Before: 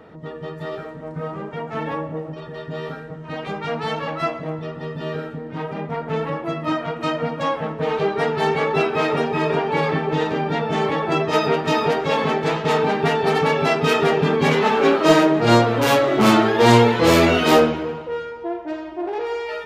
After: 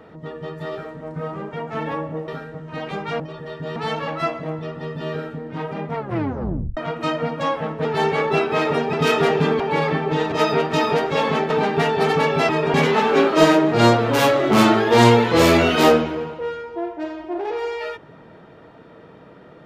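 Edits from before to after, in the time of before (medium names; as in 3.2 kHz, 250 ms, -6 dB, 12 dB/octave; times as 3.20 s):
2.28–2.84 s: move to 3.76 s
5.96 s: tape stop 0.81 s
7.85–8.28 s: delete
9.36–9.61 s: swap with 13.75–14.42 s
10.33–11.26 s: delete
12.44–12.76 s: delete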